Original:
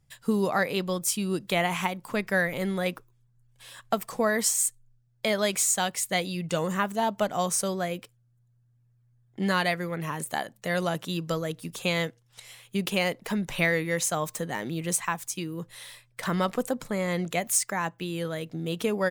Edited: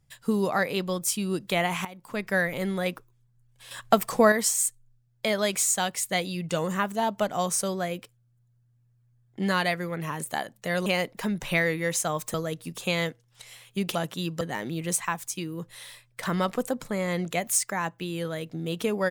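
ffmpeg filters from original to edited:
ffmpeg -i in.wav -filter_complex "[0:a]asplit=8[link_01][link_02][link_03][link_04][link_05][link_06][link_07][link_08];[link_01]atrim=end=1.85,asetpts=PTS-STARTPTS,afade=type=out:start_time=1.846:duration=0.004:curve=hsin:silence=0.16788[link_09];[link_02]atrim=start=1.85:end=3.712,asetpts=PTS-STARTPTS,afade=type=in:duration=0.49:silence=0.16788[link_10];[link_03]atrim=start=3.708:end=4.322,asetpts=PTS-STARTPTS,volume=6.5dB[link_11];[link_04]atrim=start=4.318:end=10.862[link_12];[link_05]atrim=start=12.928:end=14.412[link_13];[link_06]atrim=start=11.318:end=12.932[link_14];[link_07]atrim=start=10.858:end=11.322[link_15];[link_08]atrim=start=14.408[link_16];[link_09][link_10]concat=n=2:v=0:a=1[link_17];[link_17][link_11]acrossfade=duration=0.004:curve1=hsin:curve2=hsin[link_18];[link_18][link_12]acrossfade=duration=0.004:curve1=hsin:curve2=hsin[link_19];[link_19][link_13]acrossfade=duration=0.004:curve1=hsin:curve2=hsin[link_20];[link_20][link_14]acrossfade=duration=0.004:curve1=hsin:curve2=hsin[link_21];[link_21][link_15]acrossfade=duration=0.004:curve1=hsin:curve2=hsin[link_22];[link_22][link_16]acrossfade=duration=0.004:curve1=hsin:curve2=hsin" out.wav

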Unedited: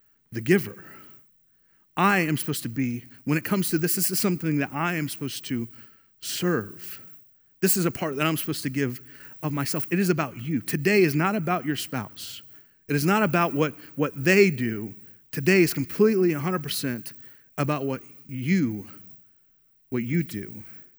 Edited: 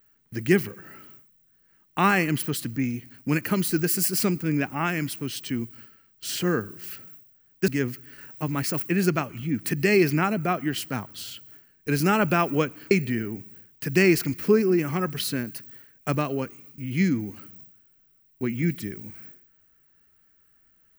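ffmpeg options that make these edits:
ffmpeg -i in.wav -filter_complex "[0:a]asplit=3[link_01][link_02][link_03];[link_01]atrim=end=7.682[link_04];[link_02]atrim=start=8.698:end=13.932[link_05];[link_03]atrim=start=14.418[link_06];[link_04][link_05]acrossfade=duration=0.004:curve1=hsin:curve2=hsin[link_07];[link_07][link_06]acrossfade=duration=0.004:curve1=hsin:curve2=hsin" out.wav

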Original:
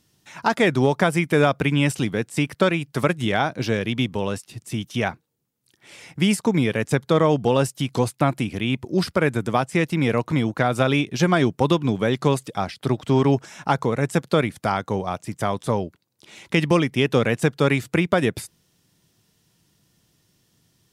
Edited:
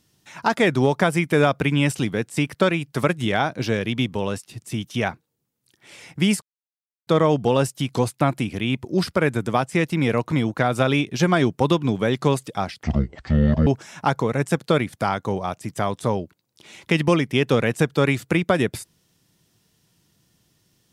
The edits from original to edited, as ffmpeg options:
ffmpeg -i in.wav -filter_complex "[0:a]asplit=5[link_01][link_02][link_03][link_04][link_05];[link_01]atrim=end=6.42,asetpts=PTS-STARTPTS,afade=type=out:start_time=6.416:duration=0.004:curve=hsin[link_06];[link_02]atrim=start=6.42:end=7.07,asetpts=PTS-STARTPTS,volume=0[link_07];[link_03]atrim=start=7.07:end=12.834,asetpts=PTS-STARTPTS,afade=type=in:duration=0.004:curve=hsin[link_08];[link_04]atrim=start=12.83:end=13.3,asetpts=PTS-STARTPTS,asetrate=24696,aresample=44100,atrim=end_sample=37012,asetpts=PTS-STARTPTS[link_09];[link_05]atrim=start=13.296[link_10];[link_06][link_07][link_08]concat=n=3:v=0:a=1[link_11];[link_11][link_09]acrossfade=duration=0.004:curve1=hsin:curve2=hsin[link_12];[link_12][link_10]acrossfade=duration=0.004:curve1=hsin:curve2=hsin" out.wav

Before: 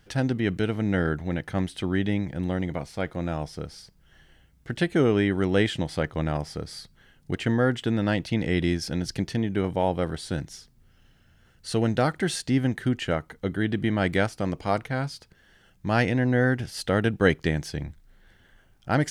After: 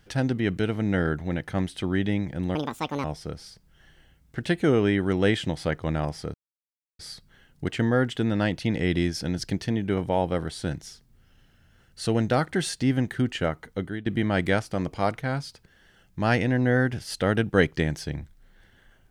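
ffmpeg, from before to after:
ffmpeg -i in.wav -filter_complex "[0:a]asplit=5[link_01][link_02][link_03][link_04][link_05];[link_01]atrim=end=2.554[link_06];[link_02]atrim=start=2.55:end=3.36,asetpts=PTS-STARTPTS,asetrate=72765,aresample=44100,atrim=end_sample=21649,asetpts=PTS-STARTPTS[link_07];[link_03]atrim=start=3.356:end=6.66,asetpts=PTS-STARTPTS,afade=type=out:start_time=3.3:duration=0.004:curve=hsin,apad=pad_dur=0.65[link_08];[link_04]atrim=start=6.66:end=13.73,asetpts=PTS-STARTPTS,afade=type=in:duration=0.004:curve=hsin,afade=type=out:start_time=6.75:duration=0.32:silence=0.149624[link_09];[link_05]atrim=start=13.73,asetpts=PTS-STARTPTS,afade=type=in:duration=0.004:curve=hsin:silence=0.149624[link_10];[link_06][link_07]acrossfade=duration=0.004:curve1=hsin:curve2=hsin[link_11];[link_08][link_09][link_10]concat=n=3:v=0:a=1[link_12];[link_11][link_12]acrossfade=duration=0.004:curve1=hsin:curve2=hsin" out.wav

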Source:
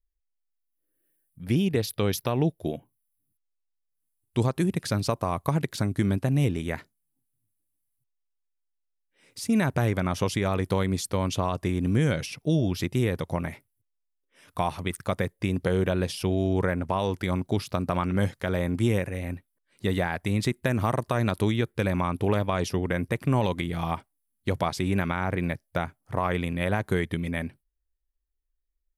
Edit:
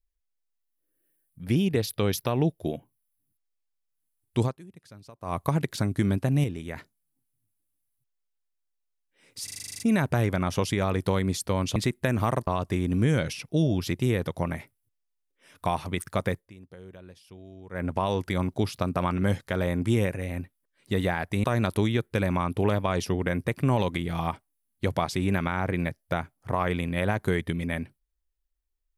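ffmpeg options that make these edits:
ffmpeg -i in.wav -filter_complex "[0:a]asplit=19[link_01][link_02][link_03][link_04][link_05][link_06][link_07][link_08][link_09][link_10][link_11][link_12][link_13][link_14][link_15][link_16][link_17][link_18][link_19];[link_01]atrim=end=4.57,asetpts=PTS-STARTPTS,afade=type=out:start_time=4.43:duration=0.14:silence=0.0794328[link_20];[link_02]atrim=start=4.57:end=5.21,asetpts=PTS-STARTPTS,volume=-22dB[link_21];[link_03]atrim=start=5.21:end=6.442,asetpts=PTS-STARTPTS,afade=type=in:duration=0.14:silence=0.0794328[link_22];[link_04]atrim=start=6.438:end=6.762,asetpts=PTS-STARTPTS,volume=-6dB[link_23];[link_05]atrim=start=6.758:end=9.482[link_24];[link_06]atrim=start=9.438:end=9.482[link_25];[link_07]atrim=start=9.438:end=9.482[link_26];[link_08]atrim=start=9.438:end=9.482[link_27];[link_09]atrim=start=9.438:end=9.482[link_28];[link_10]atrim=start=9.438:end=9.482[link_29];[link_11]atrim=start=9.438:end=9.482[link_30];[link_12]atrim=start=9.438:end=9.482[link_31];[link_13]atrim=start=9.438:end=9.482[link_32];[link_14]atrim=start=9.438:end=11.402[link_33];[link_15]atrim=start=20.368:end=21.082[link_34];[link_16]atrim=start=11.398:end=15.43,asetpts=PTS-STARTPTS,afade=type=out:start_time=3.892:duration=0.14:silence=0.0841395[link_35];[link_17]atrim=start=15.43:end=16.64,asetpts=PTS-STARTPTS,volume=-21.5dB[link_36];[link_18]atrim=start=16.64:end=20.372,asetpts=PTS-STARTPTS,afade=type=in:duration=0.14:silence=0.0841395[link_37];[link_19]atrim=start=21.078[link_38];[link_20][link_21][link_22]concat=n=3:v=0:a=1[link_39];[link_39][link_23]acrossfade=duration=0.004:curve1=hsin:curve2=hsin[link_40];[link_40][link_24]acrossfade=duration=0.004:curve1=hsin:curve2=hsin[link_41];[link_41][link_25]acrossfade=duration=0.004:curve1=hsin:curve2=hsin[link_42];[link_42][link_26]acrossfade=duration=0.004:curve1=hsin:curve2=hsin[link_43];[link_43][link_27]acrossfade=duration=0.004:curve1=hsin:curve2=hsin[link_44];[link_44][link_28]acrossfade=duration=0.004:curve1=hsin:curve2=hsin[link_45];[link_45][link_29]acrossfade=duration=0.004:curve1=hsin:curve2=hsin[link_46];[link_46][link_30]acrossfade=duration=0.004:curve1=hsin:curve2=hsin[link_47];[link_47][link_31]acrossfade=duration=0.004:curve1=hsin:curve2=hsin[link_48];[link_48][link_32]acrossfade=duration=0.004:curve1=hsin:curve2=hsin[link_49];[link_49][link_33]acrossfade=duration=0.004:curve1=hsin:curve2=hsin[link_50];[link_50][link_34]acrossfade=duration=0.004:curve1=hsin:curve2=hsin[link_51];[link_35][link_36][link_37]concat=n=3:v=0:a=1[link_52];[link_51][link_52]acrossfade=duration=0.004:curve1=hsin:curve2=hsin[link_53];[link_53][link_38]acrossfade=duration=0.004:curve1=hsin:curve2=hsin" out.wav

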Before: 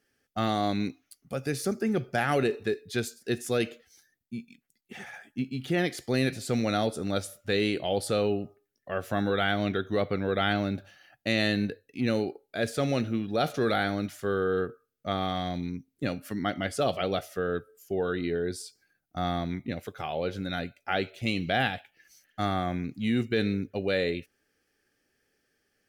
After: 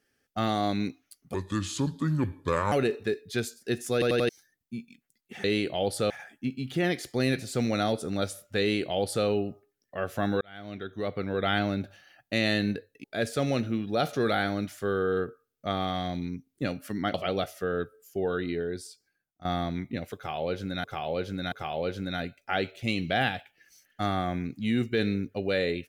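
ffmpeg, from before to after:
ffmpeg -i in.wav -filter_complex "[0:a]asplit=15[link_01][link_02][link_03][link_04][link_05][link_06][link_07][link_08][link_09][link_10][link_11][link_12][link_13][link_14][link_15];[link_01]atrim=end=1.344[link_16];[link_02]atrim=start=1.34:end=2.32,asetpts=PTS-STARTPTS,asetrate=31311,aresample=44100,atrim=end_sample=60870,asetpts=PTS-STARTPTS[link_17];[link_03]atrim=start=2.316:end=3.622[link_18];[link_04]atrim=start=3.528:end=3.622[link_19];[link_05]atrim=start=3.528:end=3.622[link_20];[link_06]atrim=start=3.528:end=3.622[link_21];[link_07]atrim=start=3.888:end=5.042[link_22];[link_08]atrim=start=7.538:end=8.202[link_23];[link_09]atrim=start=5.038:end=9.35,asetpts=PTS-STARTPTS,afade=type=out:start_time=4.308:duration=0.004:curve=hsin[link_24];[link_10]atrim=start=9.35:end=11.982,asetpts=PTS-STARTPTS,afade=type=in:duration=1.11[link_25];[link_11]atrim=start=12.448:end=16.552[link_26];[link_12]atrim=start=16.888:end=19.2,asetpts=PTS-STARTPTS,afade=type=out:start_time=1.212:duration=1.1:silence=0.188365[link_27];[link_13]atrim=start=19.2:end=20.592,asetpts=PTS-STARTPTS,afade=type=in:duration=0.004:curve=hsin:silence=0.188365[link_28];[link_14]atrim=start=19.908:end=20.592[link_29];[link_15]atrim=start=19.908[link_30];[link_16][link_17]acrossfade=duration=0.004:curve1=hsin:curve2=hsin[link_31];[link_31][link_18]acrossfade=duration=0.004:curve1=hsin:curve2=hsin[link_32];[link_32][link_19]acrossfade=duration=0.004:curve1=hsin:curve2=hsin[link_33];[link_33][link_20]acrossfade=duration=0.004:curve1=hsin:curve2=hsin[link_34];[link_34][link_21]acrossfade=duration=0.004:curve1=hsin:curve2=hsin[link_35];[link_35][link_22]acrossfade=duration=0.004:curve1=hsin:curve2=hsin[link_36];[link_36][link_23]acrossfade=duration=0.004:curve1=hsin:curve2=hsin[link_37];[link_24][link_25]concat=n=2:v=0:a=1[link_38];[link_37][link_38]acrossfade=duration=0.004:curve1=hsin:curve2=hsin[link_39];[link_39][link_26]acrossfade=duration=0.004:curve1=hsin:curve2=hsin[link_40];[link_27][link_28]concat=n=2:v=0:a=1[link_41];[link_40][link_41]acrossfade=duration=0.004:curve1=hsin:curve2=hsin[link_42];[link_42][link_29]acrossfade=duration=0.004:curve1=hsin:curve2=hsin[link_43];[link_43][link_30]acrossfade=duration=0.004:curve1=hsin:curve2=hsin" out.wav

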